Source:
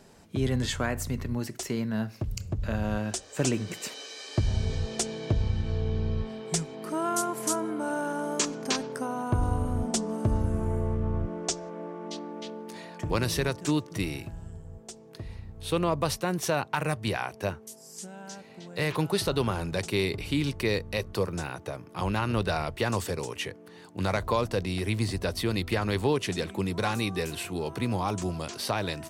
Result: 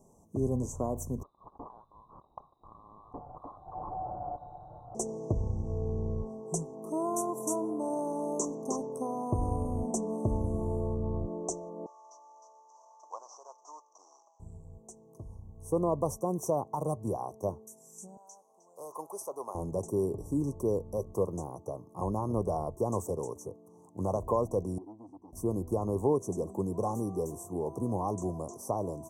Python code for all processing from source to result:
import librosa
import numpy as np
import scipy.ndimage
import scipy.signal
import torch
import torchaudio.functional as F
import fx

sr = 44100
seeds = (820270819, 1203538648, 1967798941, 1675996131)

y = fx.chain(x, sr, fx.highpass(hz=340.0, slope=6),
    fx.freq_invert(carrier_hz=3800),
    fx.env_flatten(amount_pct=70), at=(1.23, 4.95))
y = fx.chain(y, sr, fx.cvsd(bps=32000),
    fx.highpass(hz=820.0, slope=24), at=(11.86, 14.4))
y = fx.chain(y, sr, fx.highpass(hz=790.0, slope=12),
    fx.peak_eq(hz=7500.0, db=-2.5, octaves=0.2), at=(18.17, 19.55))
y = fx.chain(y, sr, fx.vowel_filter(vowel='u'),
    fx.transformer_sat(knee_hz=720.0), at=(24.78, 25.33))
y = scipy.signal.sosfilt(scipy.signal.cheby1(5, 1.0, [1100.0, 5900.0], 'bandstop', fs=sr, output='sos'), y)
y = fx.dynamic_eq(y, sr, hz=440.0, q=0.73, threshold_db=-42.0, ratio=4.0, max_db=6)
y = y * librosa.db_to_amplitude(-5.5)